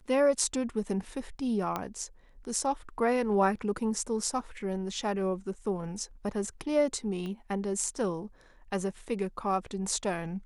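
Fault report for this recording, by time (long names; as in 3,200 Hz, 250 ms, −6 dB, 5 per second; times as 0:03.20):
0:01.76: click −17 dBFS
0:07.26: click −27 dBFS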